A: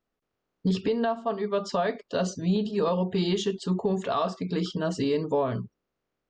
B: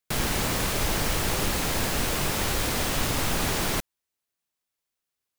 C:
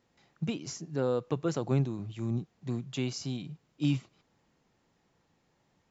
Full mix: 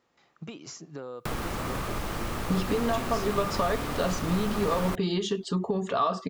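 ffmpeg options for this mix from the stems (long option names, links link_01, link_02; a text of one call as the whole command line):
ffmpeg -i stem1.wav -i stem2.wav -i stem3.wav -filter_complex "[0:a]acompressor=threshold=-26dB:ratio=6,adelay=1850,volume=2dB[link_01];[1:a]acrossover=split=1600|3400[link_02][link_03][link_04];[link_02]acompressor=threshold=-30dB:ratio=4[link_05];[link_03]acompressor=threshold=-48dB:ratio=4[link_06];[link_04]acompressor=threshold=-47dB:ratio=4[link_07];[link_05][link_06][link_07]amix=inputs=3:normalize=0,adelay=1150,volume=0dB[link_08];[2:a]bass=frequency=250:gain=-9,treble=frequency=4000:gain=-3,acompressor=threshold=-39dB:ratio=6,volume=2dB[link_09];[link_01][link_08][link_09]amix=inputs=3:normalize=0,equalizer=frequency=1200:width_type=o:width=0.25:gain=7" out.wav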